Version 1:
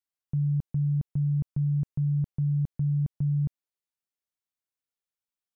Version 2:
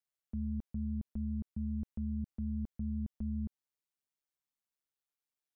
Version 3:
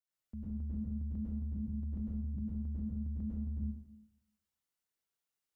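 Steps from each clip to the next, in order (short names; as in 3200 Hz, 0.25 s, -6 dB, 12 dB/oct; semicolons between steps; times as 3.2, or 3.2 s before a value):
limiter -29.5 dBFS, peak gain reduction 7.5 dB; ring modulator 70 Hz
plate-style reverb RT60 0.91 s, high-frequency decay 0.85×, pre-delay 90 ms, DRR -8 dB; gain -6 dB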